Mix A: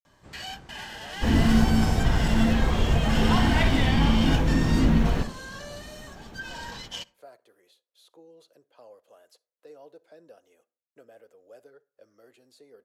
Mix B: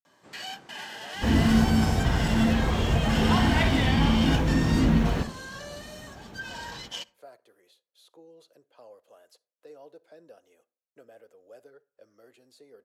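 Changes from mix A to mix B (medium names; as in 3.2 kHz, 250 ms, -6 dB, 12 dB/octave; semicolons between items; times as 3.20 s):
first sound: add high-pass 220 Hz 12 dB/octave; master: add high-pass 49 Hz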